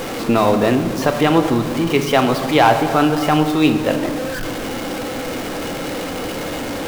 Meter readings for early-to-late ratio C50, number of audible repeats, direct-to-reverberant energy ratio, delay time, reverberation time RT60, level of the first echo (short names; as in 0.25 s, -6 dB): 9.0 dB, none, 6.5 dB, none, 1.6 s, none